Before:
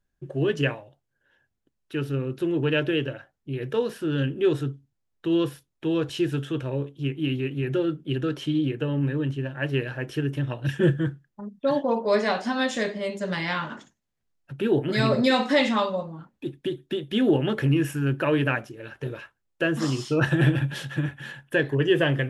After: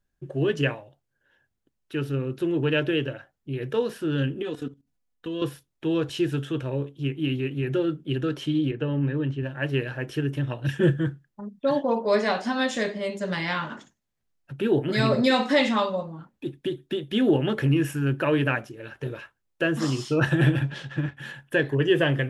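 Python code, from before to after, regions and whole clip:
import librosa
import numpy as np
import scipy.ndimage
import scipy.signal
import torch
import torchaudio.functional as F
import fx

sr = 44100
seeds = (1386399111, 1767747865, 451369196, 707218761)

y = fx.chain(x, sr, fx.comb(ms=4.1, depth=0.99),
    fx.level_steps(step_db=15), at=(4.42, 5.42))
y = fx.chain(y, sr, fx.highpass(hz=45.0, slope=12),
    fx.air_absorb(metres=110.0), at=(8.71, 9.43))
y = fx.chain(y, sr, fx.law_mismatch(coded='A'),
    fx.air_absorb(metres=97.0), at=(20.63, 21.17))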